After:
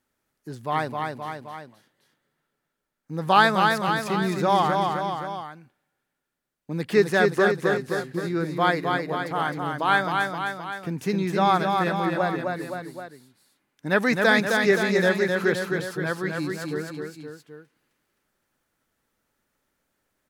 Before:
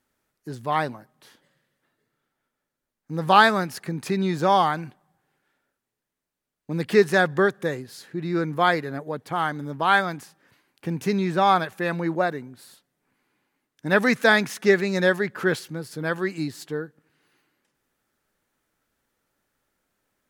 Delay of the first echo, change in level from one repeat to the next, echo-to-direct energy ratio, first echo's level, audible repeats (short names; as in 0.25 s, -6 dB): 0.261 s, -4.5 dB, -2.5 dB, -4.0 dB, 3